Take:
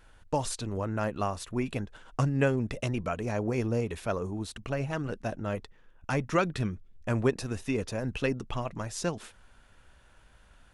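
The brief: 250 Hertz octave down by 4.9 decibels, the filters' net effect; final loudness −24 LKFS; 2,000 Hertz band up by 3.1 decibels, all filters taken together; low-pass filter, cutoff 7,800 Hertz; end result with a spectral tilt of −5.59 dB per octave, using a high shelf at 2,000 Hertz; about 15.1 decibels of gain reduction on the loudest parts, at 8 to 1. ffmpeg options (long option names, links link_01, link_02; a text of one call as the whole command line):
ffmpeg -i in.wav -af "lowpass=7800,equalizer=frequency=250:width_type=o:gain=-6.5,highshelf=frequency=2000:gain=-5,equalizer=frequency=2000:width_type=o:gain=7.5,acompressor=threshold=-37dB:ratio=8,volume=18.5dB" out.wav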